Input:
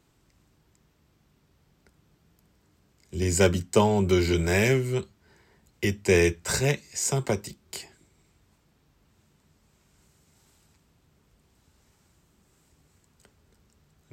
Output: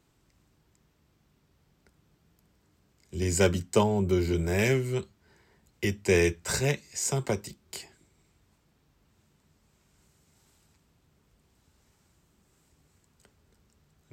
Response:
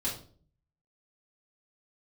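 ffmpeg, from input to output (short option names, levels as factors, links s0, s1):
-filter_complex "[0:a]asettb=1/sr,asplit=3[s0][s1][s2];[s0]atrim=end=3.834[s3];[s1]atrim=start=3.83:end=4.59,asetpts=PTS-STARTPTS,afade=t=in:d=0.004:c=qsin,afade=t=out:st=0.756:d=0.004:c=qsin,equalizer=f=3300:w=0.31:g=-7.5[s4];[s2]atrim=start=4.586[s5];[s3][s4]acrossfade=d=0.004:c1=hsin:c2=qsin[s6];[s6][s5]acrossfade=d=0.004:c1=qsin:c2=hsin,volume=0.75"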